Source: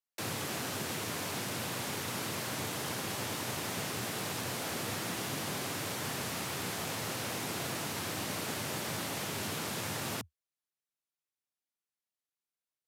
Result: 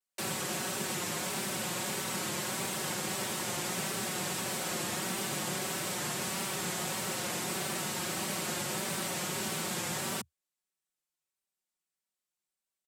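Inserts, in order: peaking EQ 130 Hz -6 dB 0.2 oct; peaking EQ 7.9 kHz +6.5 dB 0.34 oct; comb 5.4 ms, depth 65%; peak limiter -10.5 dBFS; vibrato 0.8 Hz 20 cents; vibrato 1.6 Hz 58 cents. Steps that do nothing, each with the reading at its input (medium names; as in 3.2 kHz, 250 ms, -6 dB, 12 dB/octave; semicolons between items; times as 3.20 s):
peak limiter -10.5 dBFS: peak at its input -21.5 dBFS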